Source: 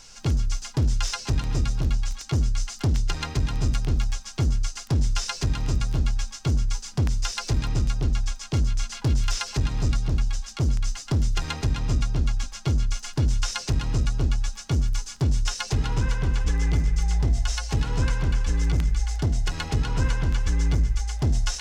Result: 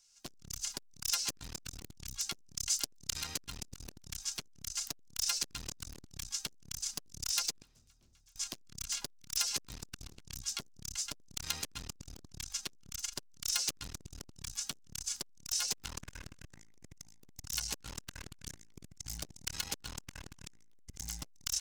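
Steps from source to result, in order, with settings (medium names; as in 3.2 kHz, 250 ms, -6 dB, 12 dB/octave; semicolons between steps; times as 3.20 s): one-sided wavefolder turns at -24 dBFS; recorder AGC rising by 8.1 dB/s; pre-emphasis filter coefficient 0.9; gate with hold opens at -33 dBFS; 2.56–3.21 s: treble shelf 2.6 kHz +5 dB; 7.61–8.36 s: inverted gate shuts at -39 dBFS, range -29 dB; speakerphone echo 100 ms, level -29 dB; transformer saturation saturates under 2 kHz; trim +5 dB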